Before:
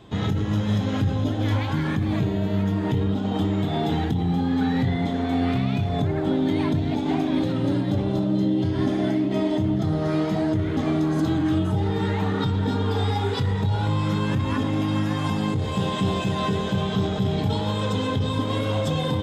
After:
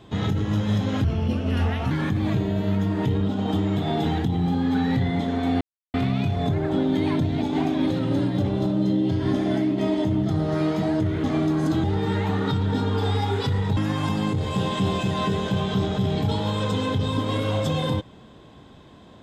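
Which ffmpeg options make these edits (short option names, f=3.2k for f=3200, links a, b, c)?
-filter_complex "[0:a]asplit=6[a][b][c][d][e][f];[a]atrim=end=1.044[g];[b]atrim=start=1.04:end=1.77,asetpts=PTS-STARTPTS,asetrate=37044,aresample=44100[h];[c]atrim=start=1.766:end=5.47,asetpts=PTS-STARTPTS,afade=t=out:st=3.7:d=0.004:c=hsin,apad=pad_dur=0.33[i];[d]atrim=start=5.47:end=11.372,asetpts=PTS-STARTPTS,afade=t=in:d=0.004:c=hsin[j];[e]atrim=start=11.768:end=13.702[k];[f]atrim=start=14.978[l];[g][h]acrossfade=d=0.004:c1=hsin:c2=hsin[m];[i][j]concat=n=2:v=0:a=1[n];[m][n]acrossfade=d=0.004:c1=hsin:c2=hsin[o];[o][k]acrossfade=d=0.004:c1=hsin:c2=hsin[p];[p][l]acrossfade=d=0.004:c1=hsin:c2=hsin"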